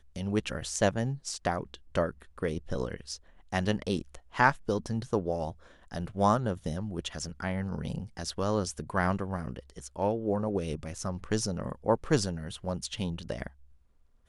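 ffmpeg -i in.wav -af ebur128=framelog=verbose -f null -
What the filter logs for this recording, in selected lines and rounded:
Integrated loudness:
  I:         -31.9 LUFS
  Threshold: -42.2 LUFS
Loudness range:
  LRA:         2.9 LU
  Threshold: -52.1 LUFS
  LRA low:   -33.4 LUFS
  LRA high:  -30.5 LUFS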